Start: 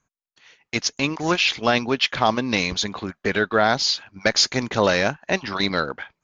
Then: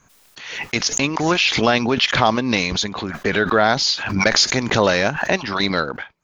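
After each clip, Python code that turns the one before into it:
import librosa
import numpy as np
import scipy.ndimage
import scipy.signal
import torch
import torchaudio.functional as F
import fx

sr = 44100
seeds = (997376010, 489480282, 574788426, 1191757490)

y = fx.pre_swell(x, sr, db_per_s=53.0)
y = y * librosa.db_to_amplitude(2.0)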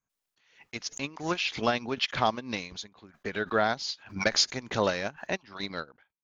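y = fx.upward_expand(x, sr, threshold_db=-30.0, expansion=2.5)
y = y * librosa.db_to_amplitude(-7.0)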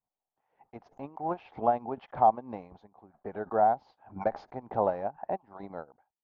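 y = fx.lowpass_res(x, sr, hz=790.0, q=5.1)
y = y * librosa.db_to_amplitude(-6.0)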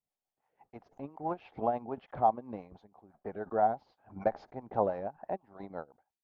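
y = fx.rotary(x, sr, hz=6.0)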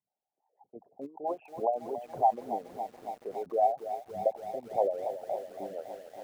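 y = fx.envelope_sharpen(x, sr, power=3.0)
y = fx.bandpass_edges(y, sr, low_hz=170.0, high_hz=2400.0)
y = fx.echo_crushed(y, sr, ms=280, feedback_pct=80, bits=9, wet_db=-11.0)
y = y * librosa.db_to_amplitude(1.5)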